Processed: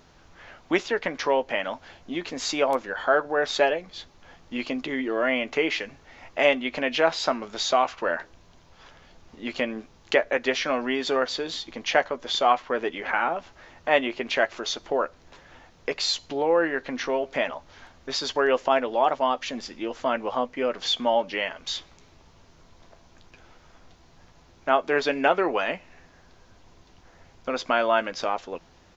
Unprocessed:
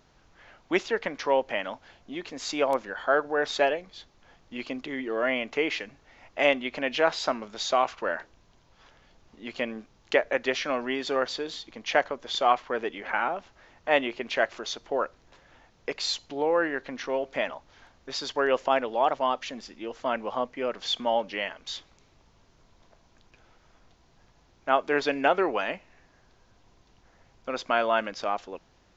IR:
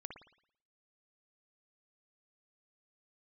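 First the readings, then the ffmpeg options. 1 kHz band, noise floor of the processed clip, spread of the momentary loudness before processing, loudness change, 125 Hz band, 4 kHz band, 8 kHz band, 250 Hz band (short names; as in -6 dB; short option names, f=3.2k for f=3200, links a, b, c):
+2.0 dB, -56 dBFS, 14 LU, +2.5 dB, +3.5 dB, +3.5 dB, n/a, +3.5 dB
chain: -filter_complex "[0:a]asplit=2[a][b];[b]acompressor=threshold=-34dB:ratio=6,volume=0dB[c];[a][c]amix=inputs=2:normalize=0,asplit=2[d][e];[e]adelay=12,volume=-10.5dB[f];[d][f]amix=inputs=2:normalize=0"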